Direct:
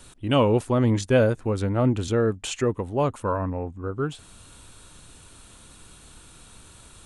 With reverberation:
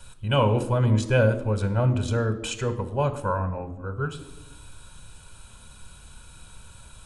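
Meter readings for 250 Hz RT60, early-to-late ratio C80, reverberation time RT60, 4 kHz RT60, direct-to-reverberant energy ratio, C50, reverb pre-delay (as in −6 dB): 1.3 s, 15.5 dB, 1.0 s, 0.70 s, 9.0 dB, 13.0 dB, 3 ms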